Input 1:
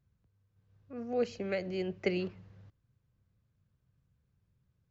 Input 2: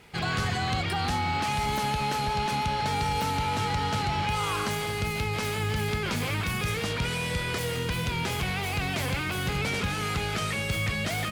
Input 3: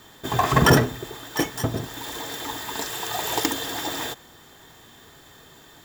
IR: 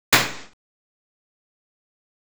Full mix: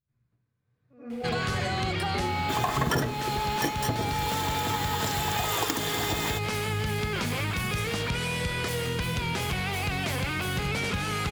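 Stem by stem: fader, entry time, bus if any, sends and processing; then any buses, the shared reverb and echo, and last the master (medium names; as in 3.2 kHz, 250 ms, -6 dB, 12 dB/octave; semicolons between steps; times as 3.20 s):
-14.5 dB, 0.00 s, send -12 dB, none
+1.5 dB, 1.10 s, no send, none
+2.0 dB, 2.25 s, no send, none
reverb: on, RT60 0.60 s, pre-delay 76 ms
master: compression 4:1, threshold -25 dBFS, peak gain reduction 14 dB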